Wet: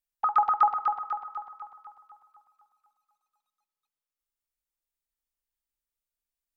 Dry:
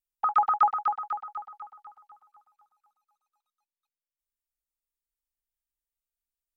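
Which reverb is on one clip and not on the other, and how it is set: FDN reverb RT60 2.3 s, low-frequency decay 0.85×, high-frequency decay 0.45×, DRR 15 dB

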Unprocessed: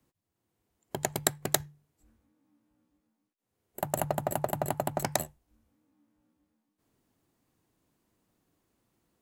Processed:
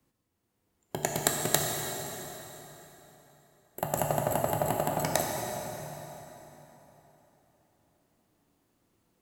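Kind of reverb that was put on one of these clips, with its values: plate-style reverb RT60 3.8 s, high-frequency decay 0.8×, DRR -0.5 dB

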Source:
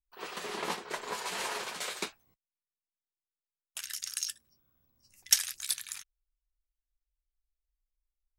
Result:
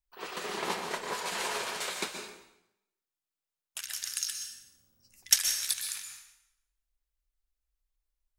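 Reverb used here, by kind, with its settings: plate-style reverb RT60 0.83 s, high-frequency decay 0.9×, pre-delay 0.11 s, DRR 4 dB; gain +1 dB

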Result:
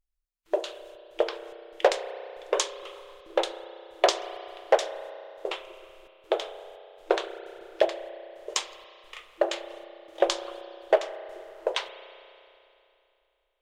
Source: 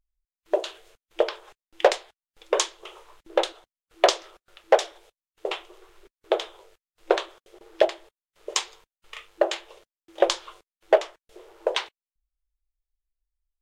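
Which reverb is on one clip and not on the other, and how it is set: spring tank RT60 2.8 s, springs 32 ms, chirp 55 ms, DRR 10.5 dB; gain -3 dB

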